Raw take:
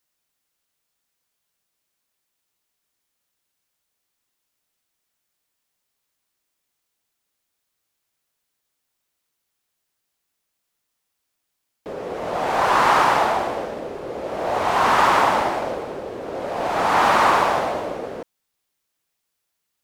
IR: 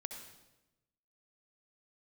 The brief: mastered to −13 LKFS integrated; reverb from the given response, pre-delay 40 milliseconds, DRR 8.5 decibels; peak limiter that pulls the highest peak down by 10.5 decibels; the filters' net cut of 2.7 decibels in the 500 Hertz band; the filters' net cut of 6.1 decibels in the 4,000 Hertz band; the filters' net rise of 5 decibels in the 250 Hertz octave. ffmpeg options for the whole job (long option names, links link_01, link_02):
-filter_complex "[0:a]equalizer=frequency=250:width_type=o:gain=8.5,equalizer=frequency=500:width_type=o:gain=-5.5,equalizer=frequency=4000:width_type=o:gain=-8.5,alimiter=limit=-15.5dB:level=0:latency=1,asplit=2[link_01][link_02];[1:a]atrim=start_sample=2205,adelay=40[link_03];[link_02][link_03]afir=irnorm=-1:irlink=0,volume=-6.5dB[link_04];[link_01][link_04]amix=inputs=2:normalize=0,volume=12.5dB"